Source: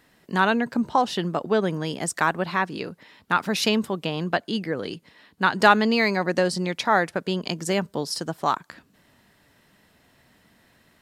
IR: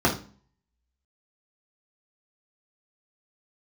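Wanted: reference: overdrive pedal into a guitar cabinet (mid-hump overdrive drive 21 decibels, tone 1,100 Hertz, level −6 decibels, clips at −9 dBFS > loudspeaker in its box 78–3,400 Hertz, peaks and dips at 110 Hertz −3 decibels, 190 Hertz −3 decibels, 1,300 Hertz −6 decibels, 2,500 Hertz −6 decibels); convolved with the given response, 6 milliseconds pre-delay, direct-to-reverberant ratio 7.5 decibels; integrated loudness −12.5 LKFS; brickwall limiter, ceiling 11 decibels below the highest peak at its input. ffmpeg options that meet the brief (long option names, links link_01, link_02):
-filter_complex "[0:a]alimiter=limit=-14dB:level=0:latency=1,asplit=2[link_01][link_02];[1:a]atrim=start_sample=2205,adelay=6[link_03];[link_02][link_03]afir=irnorm=-1:irlink=0,volume=-23.5dB[link_04];[link_01][link_04]amix=inputs=2:normalize=0,asplit=2[link_05][link_06];[link_06]highpass=frequency=720:poles=1,volume=21dB,asoftclip=type=tanh:threshold=-9dB[link_07];[link_05][link_07]amix=inputs=2:normalize=0,lowpass=frequency=1100:poles=1,volume=-6dB,highpass=78,equalizer=frequency=110:width_type=q:width=4:gain=-3,equalizer=frequency=190:width_type=q:width=4:gain=-3,equalizer=frequency=1300:width_type=q:width=4:gain=-6,equalizer=frequency=2500:width_type=q:width=4:gain=-6,lowpass=frequency=3400:width=0.5412,lowpass=frequency=3400:width=1.3066,volume=10.5dB"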